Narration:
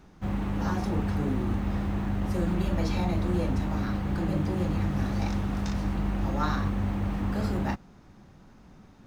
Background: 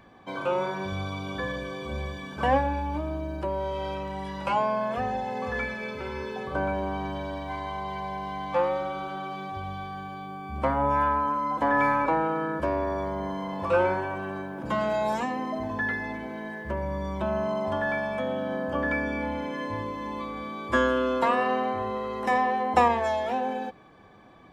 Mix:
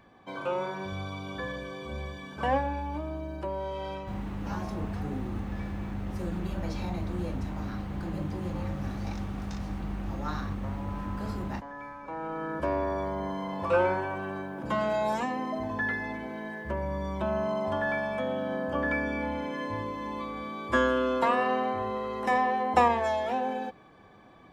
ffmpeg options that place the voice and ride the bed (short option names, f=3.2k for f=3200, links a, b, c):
-filter_complex "[0:a]adelay=3850,volume=-6dB[a];[1:a]volume=14dB,afade=t=out:st=3.96:d=0.3:silence=0.16788,afade=t=in:st=12.03:d=0.69:silence=0.125893[b];[a][b]amix=inputs=2:normalize=0"